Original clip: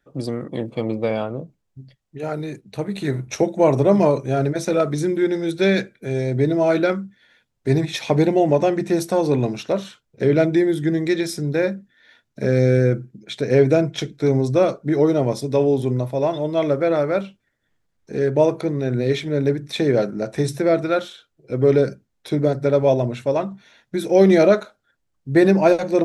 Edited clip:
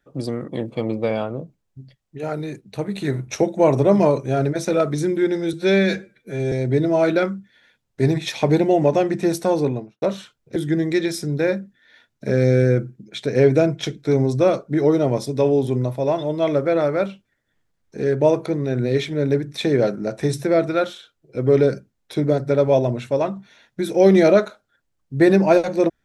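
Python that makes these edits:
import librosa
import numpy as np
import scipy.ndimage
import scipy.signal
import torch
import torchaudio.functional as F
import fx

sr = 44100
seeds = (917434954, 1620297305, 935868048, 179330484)

y = fx.studio_fade_out(x, sr, start_s=9.18, length_s=0.51)
y = fx.edit(y, sr, fx.stretch_span(start_s=5.53, length_s=0.66, factor=1.5),
    fx.cut(start_s=10.23, length_s=0.48), tone=tone)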